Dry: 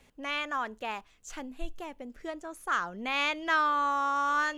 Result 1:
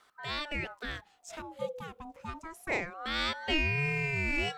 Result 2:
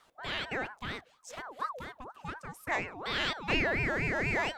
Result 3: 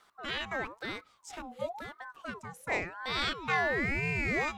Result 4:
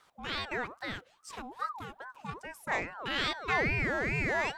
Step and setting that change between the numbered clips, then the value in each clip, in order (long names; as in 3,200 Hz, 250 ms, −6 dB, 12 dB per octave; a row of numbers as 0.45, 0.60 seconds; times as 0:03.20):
ring modulator whose carrier an LFO sweeps, at: 0.26, 4.2, 0.98, 2.4 Hertz